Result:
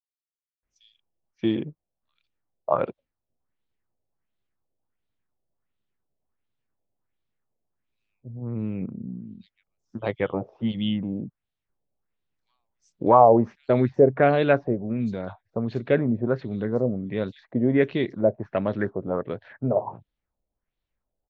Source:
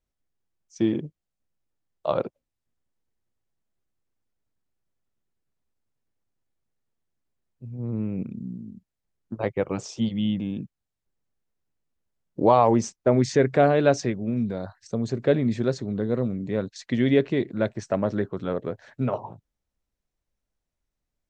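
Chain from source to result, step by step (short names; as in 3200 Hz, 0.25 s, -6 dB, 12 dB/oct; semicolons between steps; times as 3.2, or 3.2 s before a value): LFO low-pass sine 1.4 Hz 600–3900 Hz; bands offset in time highs, lows 0.63 s, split 5300 Hz; gain -1 dB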